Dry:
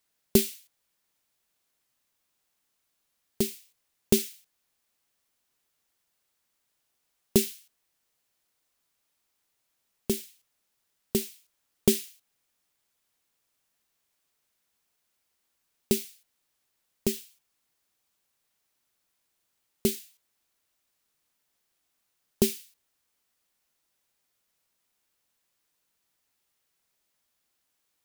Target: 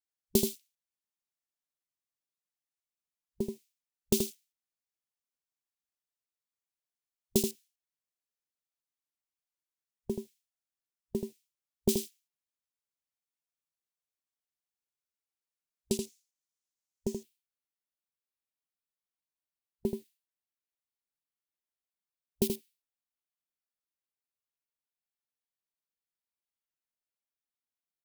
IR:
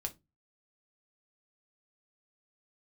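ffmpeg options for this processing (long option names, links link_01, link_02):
-af "afwtdn=0.0112,asetnsamples=nb_out_samples=441:pad=0,asendcmd='15.99 equalizer g 12;17.15 equalizer g -3',equalizer=frequency=6500:width_type=o:width=0.87:gain=2.5,aecho=1:1:80:0.531,volume=-5.5dB"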